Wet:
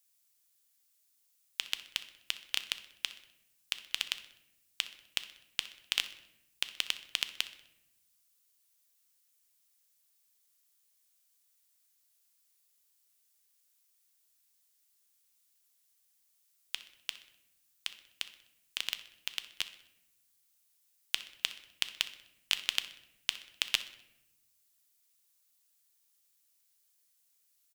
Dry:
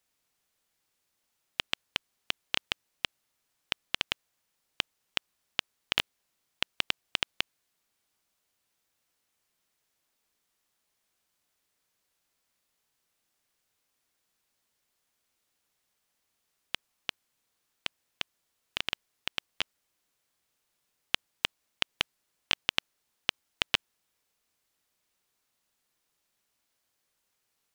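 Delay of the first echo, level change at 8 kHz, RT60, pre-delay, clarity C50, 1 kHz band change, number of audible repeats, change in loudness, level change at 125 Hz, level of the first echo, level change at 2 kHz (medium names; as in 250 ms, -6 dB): 63 ms, +4.5 dB, 0.95 s, 3 ms, 12.5 dB, -9.5 dB, 3, -2.5 dB, under -10 dB, -18.5 dB, -4.0 dB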